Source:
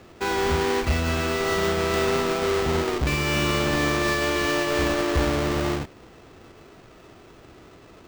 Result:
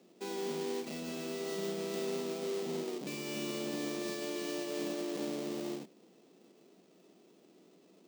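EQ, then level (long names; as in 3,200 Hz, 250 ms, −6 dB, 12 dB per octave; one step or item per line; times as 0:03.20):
elliptic high-pass filter 180 Hz, stop band 60 dB
parametric band 1,400 Hz −15 dB 1.9 octaves
−9.0 dB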